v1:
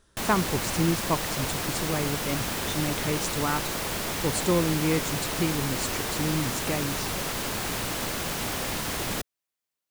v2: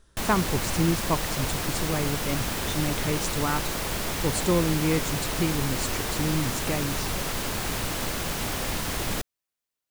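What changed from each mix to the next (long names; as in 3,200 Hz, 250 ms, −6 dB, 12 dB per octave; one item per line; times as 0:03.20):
master: add low-shelf EQ 64 Hz +10 dB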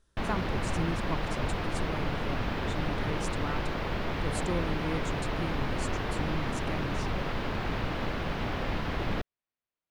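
speech −10.0 dB
background: add high-frequency loss of the air 330 metres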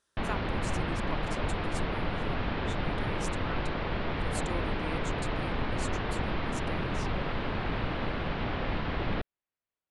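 speech: add high-pass filter 750 Hz 6 dB per octave
background: add low-pass filter 4,400 Hz 24 dB per octave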